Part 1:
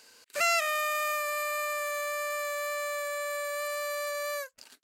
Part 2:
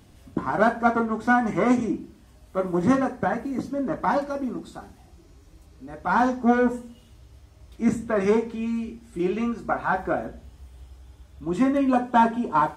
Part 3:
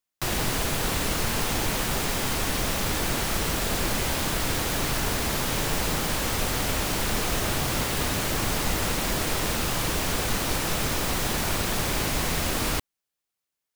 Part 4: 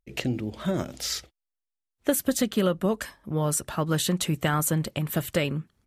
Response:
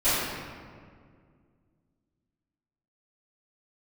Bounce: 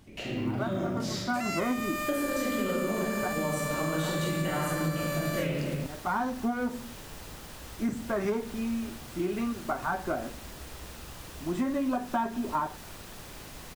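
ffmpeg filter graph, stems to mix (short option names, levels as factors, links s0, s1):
-filter_complex "[0:a]alimiter=level_in=1.41:limit=0.0631:level=0:latency=1,volume=0.708,adelay=1000,volume=1.19[s0];[1:a]bandreject=f=480:w=12,volume=0.668[s1];[2:a]bandreject=f=2200:w=26,adelay=1400,volume=0.119[s2];[3:a]equalizer=f=12000:w=0.57:g=-7.5,volume=0.2,asplit=3[s3][s4][s5];[s4]volume=0.631[s6];[s5]apad=whole_len=563027[s7];[s1][s7]sidechaincompress=threshold=0.00251:ratio=8:attack=5.4:release=323[s8];[4:a]atrim=start_sample=2205[s9];[s6][s9]afir=irnorm=-1:irlink=0[s10];[s0][s8][s2][s3][s10]amix=inputs=5:normalize=0,acrusher=bits=9:mode=log:mix=0:aa=0.000001,acompressor=threshold=0.0501:ratio=5"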